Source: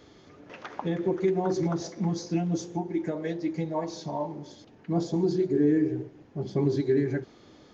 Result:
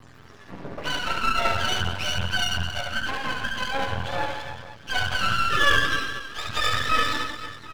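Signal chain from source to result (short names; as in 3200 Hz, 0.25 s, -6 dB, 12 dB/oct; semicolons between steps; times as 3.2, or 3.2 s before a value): spectrum mirrored in octaves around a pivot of 710 Hz; reverse bouncing-ball echo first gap 70 ms, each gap 1.4×, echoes 5; half-wave rectifier; gain +8.5 dB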